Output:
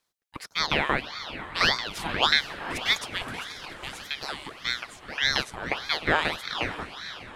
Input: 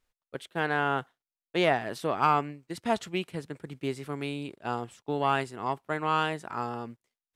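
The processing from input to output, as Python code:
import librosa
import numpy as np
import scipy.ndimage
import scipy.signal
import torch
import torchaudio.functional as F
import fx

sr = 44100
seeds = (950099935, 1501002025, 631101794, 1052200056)

y = fx.filter_lfo_highpass(x, sr, shape='saw_up', hz=5.6, low_hz=270.0, high_hz=2600.0, q=0.7)
y = fx.echo_diffused(y, sr, ms=463, feedback_pct=58, wet_db=-11.5)
y = fx.ring_lfo(y, sr, carrier_hz=1600.0, swing_pct=80, hz=1.7)
y = F.gain(torch.from_numpy(y), 8.0).numpy()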